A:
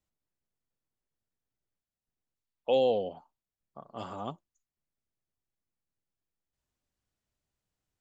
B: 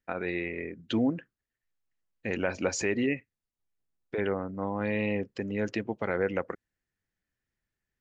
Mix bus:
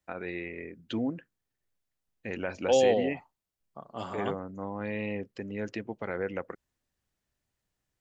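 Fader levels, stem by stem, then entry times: +2.5, −4.5 decibels; 0.00, 0.00 seconds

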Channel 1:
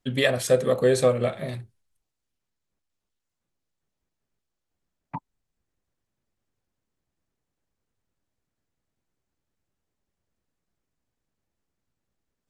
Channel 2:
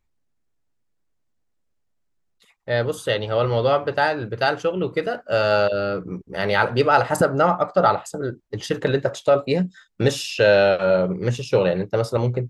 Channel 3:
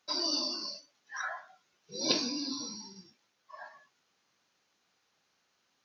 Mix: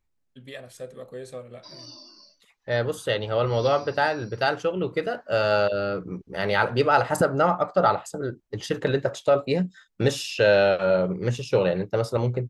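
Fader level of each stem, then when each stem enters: −18.0, −3.0, −12.5 decibels; 0.30, 0.00, 1.55 seconds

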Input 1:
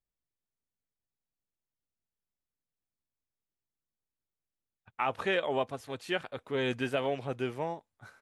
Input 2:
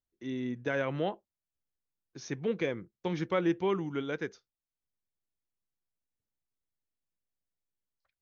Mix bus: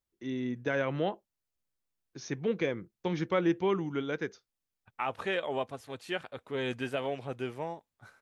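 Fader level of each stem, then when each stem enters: −2.5, +1.0 decibels; 0.00, 0.00 seconds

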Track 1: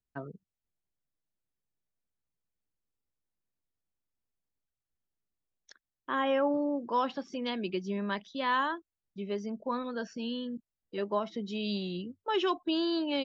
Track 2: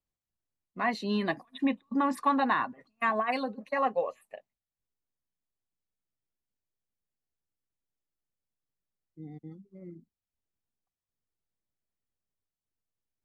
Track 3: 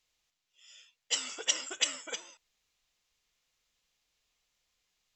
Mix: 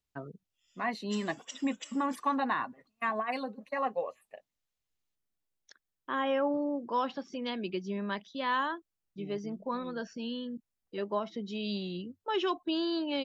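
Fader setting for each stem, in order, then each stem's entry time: −1.5, −4.0, −16.0 decibels; 0.00, 0.00, 0.00 seconds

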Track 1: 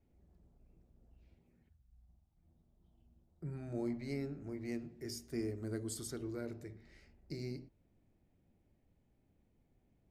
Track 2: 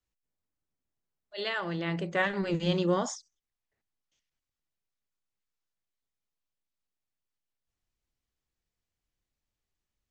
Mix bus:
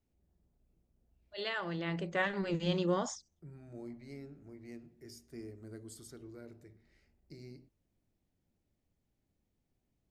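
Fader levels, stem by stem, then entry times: −8.0, −4.5 decibels; 0.00, 0.00 seconds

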